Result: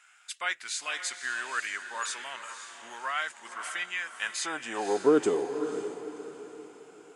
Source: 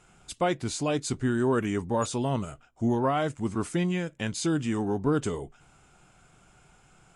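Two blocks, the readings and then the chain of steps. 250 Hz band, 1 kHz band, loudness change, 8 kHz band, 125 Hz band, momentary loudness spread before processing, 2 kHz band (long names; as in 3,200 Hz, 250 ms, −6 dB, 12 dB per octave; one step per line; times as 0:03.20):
−8.0 dB, −3.0 dB, −3.0 dB, +1.0 dB, −24.0 dB, 7 LU, +6.5 dB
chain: high-pass filter sweep 1,700 Hz → 350 Hz, 0:04.03–0:05.21
feedback delay with all-pass diffusion 534 ms, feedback 40%, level −9 dB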